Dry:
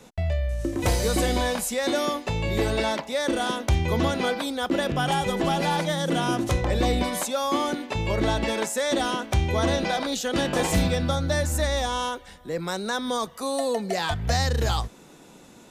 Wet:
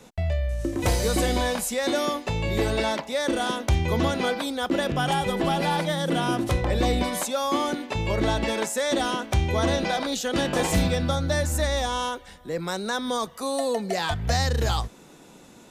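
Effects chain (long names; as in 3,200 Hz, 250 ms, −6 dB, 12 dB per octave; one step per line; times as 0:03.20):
0:05.13–0:06.78: parametric band 6,500 Hz −5.5 dB 0.41 octaves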